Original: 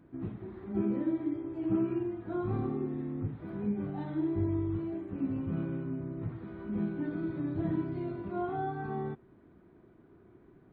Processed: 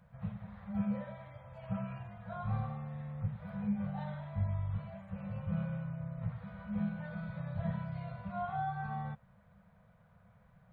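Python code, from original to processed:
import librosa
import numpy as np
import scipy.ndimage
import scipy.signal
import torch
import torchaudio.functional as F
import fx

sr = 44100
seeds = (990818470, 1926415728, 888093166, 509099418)

y = scipy.signal.sosfilt(scipy.signal.ellip(3, 1.0, 40, [200.0, 510.0], 'bandstop', fs=sr, output='sos'), x)
y = y * librosa.db_to_amplitude(1.0)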